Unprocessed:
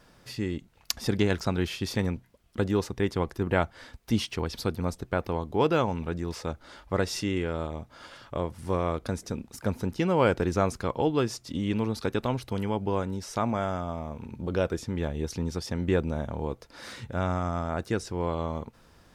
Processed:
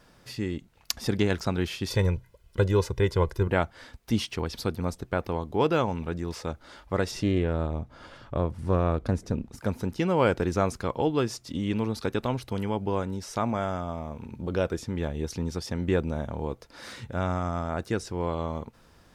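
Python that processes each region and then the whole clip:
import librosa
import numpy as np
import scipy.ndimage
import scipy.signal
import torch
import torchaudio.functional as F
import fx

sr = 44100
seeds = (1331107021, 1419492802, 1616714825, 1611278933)

y = fx.chain(x, sr, fx.low_shelf(hz=120.0, db=7.0),
    fx.comb(ms=2.0, depth=0.73), at=(1.9, 3.48))
y = fx.chain(y, sr, fx.tilt_eq(slope=-2.0),
    fx.doppler_dist(depth_ms=0.18), at=(7.11, 9.59))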